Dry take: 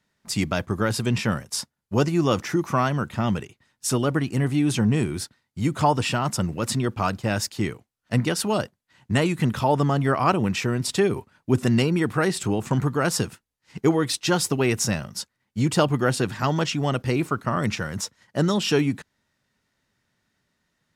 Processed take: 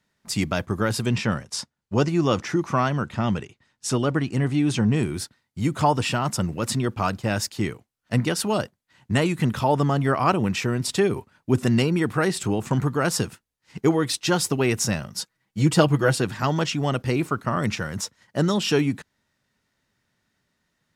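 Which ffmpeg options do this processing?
ffmpeg -i in.wav -filter_complex "[0:a]asettb=1/sr,asplit=3[link_01][link_02][link_03];[link_01]atrim=end=1.154[link_04];[link_02]atrim=start=1.15:end=5.03,asetpts=PTS-STARTPTS,afade=type=in:duration=0.004:curve=qsin,afade=type=out:start_time=3.876:duration=0.004:curve=qsin,lowpass=7800[link_05];[link_03]atrim=start=5.026[link_06];[link_04][link_05]acrossfade=duration=0.004:curve1=hsin:curve2=qsin[link_07];[link_07][link_06]acrossfade=duration=0.004:curve1=qsin:curve2=hsin,asettb=1/sr,asplit=3[link_08][link_09][link_10];[link_08]atrim=end=15.174[link_11];[link_09]atrim=start=15.17:end=16.18,asetpts=PTS-STARTPTS,afade=type=in:duration=0.004:curve=qsin,afade=type=out:start_time=1.006:duration=0.004:curve=qsin,aecho=1:1:6.2:0.65,atrim=end_sample=44541[link_12];[link_10]atrim=start=16.176[link_13];[link_11][link_12]acrossfade=duration=0.004:curve1=hsin:curve2=qsin[link_14];[link_14][link_13]acrossfade=duration=0.004:curve1=qsin:curve2=hsin" out.wav

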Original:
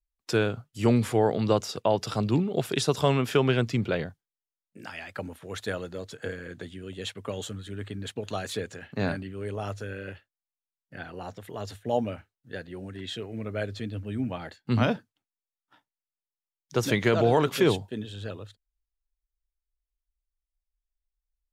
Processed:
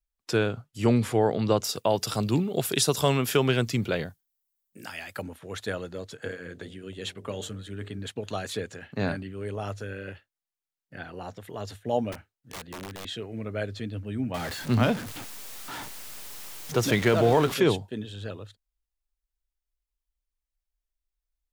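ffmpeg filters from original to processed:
ffmpeg -i in.wav -filter_complex "[0:a]asettb=1/sr,asplit=3[link_01][link_02][link_03];[link_01]atrim=end=1.644[link_04];[link_02]atrim=start=1.64:end=5.22,asetpts=PTS-STARTPTS,afade=type=in:duration=0.004:curve=qsin,afade=type=out:start_time=3.576:duration=0.004:curve=qsin,aemphasis=mode=production:type=50fm[link_05];[link_03]atrim=start=5.216[link_06];[link_04][link_05]acrossfade=duration=0.004:curve1=hsin:curve2=qsin[link_07];[link_07][link_06]acrossfade=duration=0.004:curve1=qsin:curve2=hsin,asettb=1/sr,asplit=3[link_08][link_09][link_10];[link_08]atrim=end=6.224[link_11];[link_09]atrim=start=6.22:end=7.99,asetpts=PTS-STARTPTS,afade=type=in:duration=0.004:curve=qsin,afade=type=out:start_time=1.766:duration=0.004:curve=qsin,bandreject=frequency=45.42:width_type=h:width=4,bandreject=frequency=90.84:width_type=h:width=4,bandreject=frequency=136.26:width_type=h:width=4,bandreject=frequency=181.68:width_type=h:width=4,bandreject=frequency=227.1:width_type=h:width=4,bandreject=frequency=272.52:width_type=h:width=4,bandreject=frequency=317.94:width_type=h:width=4,bandreject=frequency=363.36:width_type=h:width=4,bandreject=frequency=408.78:width_type=h:width=4,bandreject=frequency=454.2:width_type=h:width=4,bandreject=frequency=499.62:width_type=h:width=4,bandreject=frequency=545.04:width_type=h:width=4,bandreject=frequency=590.46:width_type=h:width=4,bandreject=frequency=635.88:width_type=h:width=4,bandreject=frequency=681.3:width_type=h:width=4,bandreject=frequency=726.72:width_type=h:width=4,bandreject=frequency=772.14:width_type=h:width=4[link_12];[link_10]atrim=start=7.986[link_13];[link_11][link_12]acrossfade=duration=0.004:curve1=hsin:curve2=qsin[link_14];[link_14][link_13]acrossfade=duration=0.004:curve1=qsin:curve2=hsin,asettb=1/sr,asplit=3[link_15][link_16][link_17];[link_15]atrim=end=12.124[link_18];[link_16]atrim=start=12.12:end=13.05,asetpts=PTS-STARTPTS,afade=type=in:duration=0.004:curve=qsin,afade=type=out:start_time=0.926:duration=0.004:curve=qsin,aeval=exprs='(mod(42.2*val(0)+1,2)-1)/42.2':channel_layout=same[link_19];[link_17]atrim=start=13.046[link_20];[link_18][link_19]acrossfade=duration=0.004:curve1=hsin:curve2=qsin[link_21];[link_21][link_20]acrossfade=duration=0.004:curve1=qsin:curve2=hsin,asettb=1/sr,asplit=3[link_22][link_23][link_24];[link_22]atrim=end=14.344[link_25];[link_23]atrim=start=14.34:end=17.54,asetpts=PTS-STARTPTS,afade=type=in:duration=0.004:curve=qsin,afade=type=out:start_time=3.196:duration=0.004:curve=qsin,aeval=exprs='val(0)+0.5*0.0282*sgn(val(0))':channel_layout=same[link_26];[link_24]atrim=start=17.536[link_27];[link_25][link_26]acrossfade=duration=0.004:curve1=hsin:curve2=qsin[link_28];[link_28][link_27]acrossfade=duration=0.004:curve1=qsin:curve2=hsin" out.wav

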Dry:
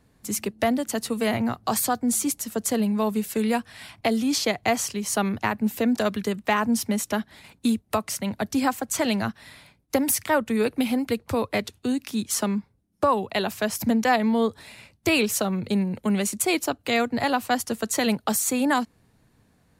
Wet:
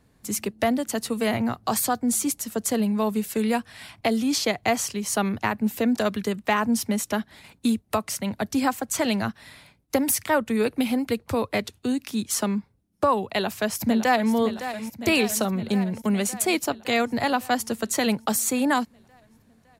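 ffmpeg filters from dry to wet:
ffmpeg -i in.wav -filter_complex "[0:a]asplit=2[link_01][link_02];[link_02]afade=type=in:start_time=13.34:duration=0.01,afade=type=out:start_time=14.33:duration=0.01,aecho=0:1:560|1120|1680|2240|2800|3360|3920|4480|5040|5600:0.281838|0.197287|0.138101|0.0966705|0.0676694|0.0473686|0.033158|0.0232106|0.0162474|0.0113732[link_03];[link_01][link_03]amix=inputs=2:normalize=0" out.wav

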